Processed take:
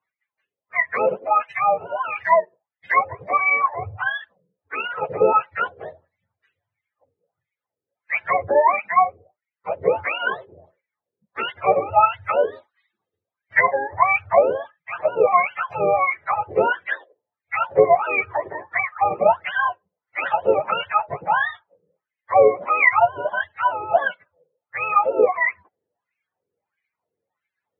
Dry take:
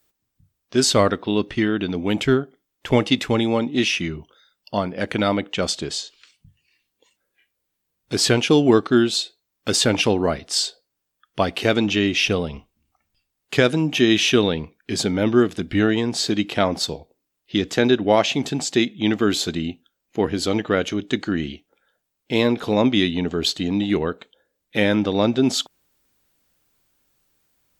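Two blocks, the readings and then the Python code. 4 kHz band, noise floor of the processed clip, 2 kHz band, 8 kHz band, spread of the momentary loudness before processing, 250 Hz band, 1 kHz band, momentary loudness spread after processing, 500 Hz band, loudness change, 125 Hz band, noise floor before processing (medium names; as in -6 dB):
-17.0 dB, under -85 dBFS, +4.5 dB, under -40 dB, 11 LU, -20.0 dB, +10.5 dB, 11 LU, +1.0 dB, +0.5 dB, -15.5 dB, -78 dBFS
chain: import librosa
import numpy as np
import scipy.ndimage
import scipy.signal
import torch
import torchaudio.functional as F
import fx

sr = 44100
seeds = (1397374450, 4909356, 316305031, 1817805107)

y = fx.octave_mirror(x, sr, pivot_hz=510.0)
y = fx.graphic_eq_10(y, sr, hz=(500, 2000, 4000), db=(5, 12, 6))
y = fx.wah_lfo(y, sr, hz=1.5, low_hz=410.0, high_hz=2200.0, q=5.1)
y = fx.rider(y, sr, range_db=4, speed_s=2.0)
y = y * 10.0 ** (7.5 / 20.0)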